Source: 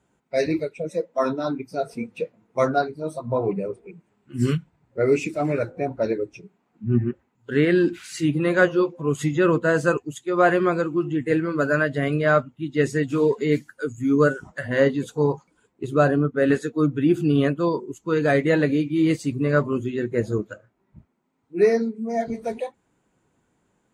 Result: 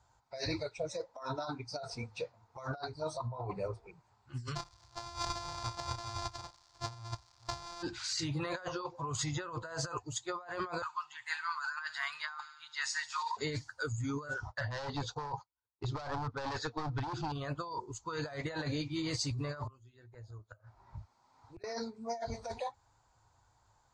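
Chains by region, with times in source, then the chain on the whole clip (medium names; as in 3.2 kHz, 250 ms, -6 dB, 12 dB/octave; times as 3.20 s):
4.55–7.81 s: sorted samples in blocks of 128 samples + doubling 34 ms -10 dB + crackle 300 per s -49 dBFS
10.82–13.37 s: elliptic high-pass 890 Hz + feedback echo behind a high-pass 72 ms, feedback 63%, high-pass 3 kHz, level -14.5 dB
14.34–17.32 s: expander -44 dBFS + low-pass 5.6 kHz 24 dB/octave + overload inside the chain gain 20 dB
19.63–21.64 s: inverted gate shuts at -23 dBFS, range -26 dB + three bands compressed up and down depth 70%
whole clip: FFT filter 110 Hz 0 dB, 180 Hz -24 dB, 420 Hz -19 dB, 880 Hz +1 dB, 2 kHz -11 dB, 2.9 kHz -12 dB, 4.6 kHz +4 dB, 7.3 kHz -5 dB, 12 kHz -29 dB; compressor with a negative ratio -39 dBFS, ratio -1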